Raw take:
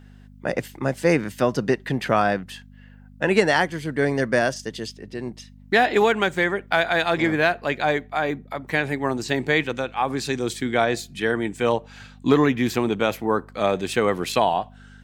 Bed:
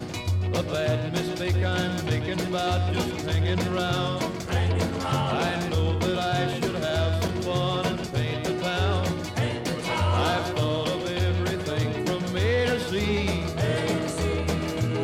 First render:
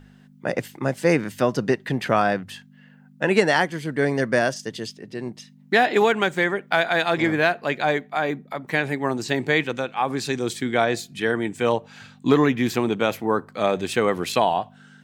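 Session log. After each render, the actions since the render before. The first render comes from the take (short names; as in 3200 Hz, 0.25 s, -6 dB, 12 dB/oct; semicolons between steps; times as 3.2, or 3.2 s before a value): de-hum 50 Hz, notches 2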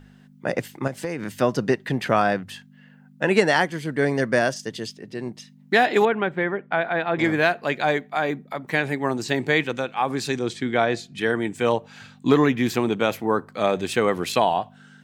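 0.87–1.35 compressor 12:1, threshold -23 dBFS; 6.05–7.19 air absorption 500 m; 10.39–11.18 air absorption 76 m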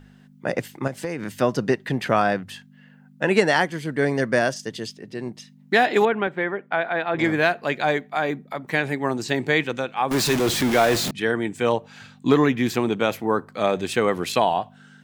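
6.27–7.15 HPF 230 Hz 6 dB/oct; 10.11–11.11 zero-crossing step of -20 dBFS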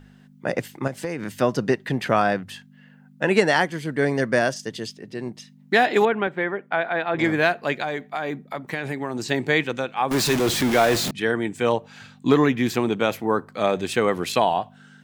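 7.82–9.25 compressor, threshold -22 dBFS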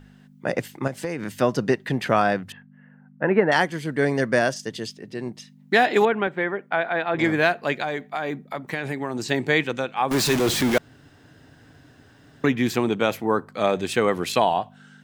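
2.52–3.52 LPF 1900 Hz 24 dB/oct; 10.78–12.44 room tone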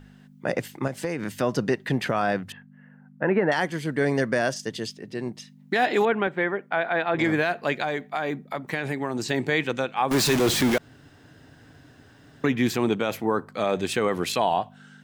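limiter -12 dBFS, peak gain reduction 8 dB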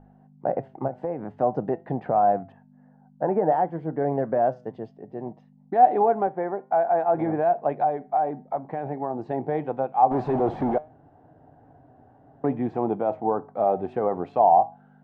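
synth low-pass 760 Hz, resonance Q 4.9; flange 0.54 Hz, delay 5.8 ms, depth 2.3 ms, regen +86%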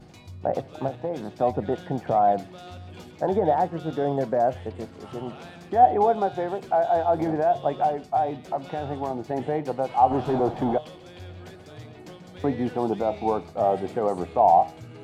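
add bed -17 dB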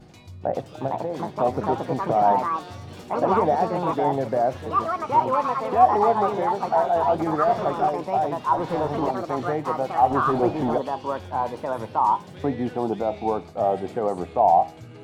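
echoes that change speed 0.551 s, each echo +4 st, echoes 2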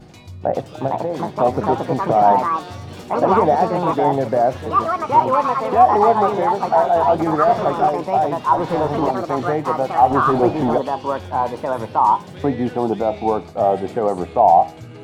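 gain +5.5 dB; limiter -2 dBFS, peak gain reduction 2.5 dB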